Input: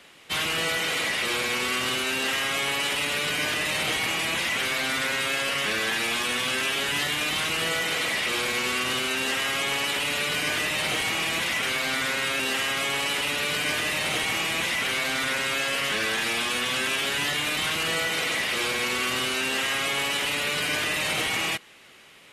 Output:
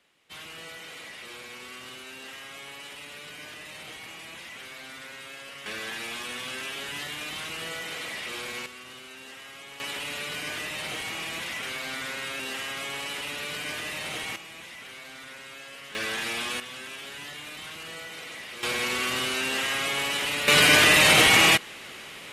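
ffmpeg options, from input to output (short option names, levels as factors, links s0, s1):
-af "asetnsamples=n=441:p=0,asendcmd='5.66 volume volume -9dB;8.66 volume volume -18dB;9.8 volume volume -7.5dB;14.36 volume volume -17dB;15.95 volume volume -4.5dB;16.6 volume volume -13.5dB;18.63 volume volume -1.5dB;20.48 volume volume 9.5dB',volume=0.158"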